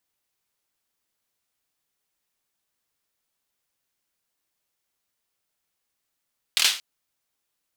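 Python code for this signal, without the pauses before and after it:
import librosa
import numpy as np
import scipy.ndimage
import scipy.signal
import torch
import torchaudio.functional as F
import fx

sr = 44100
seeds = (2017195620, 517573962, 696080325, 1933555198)

y = fx.drum_clap(sr, seeds[0], length_s=0.23, bursts=4, spacing_ms=25, hz=3400.0, decay_s=0.36)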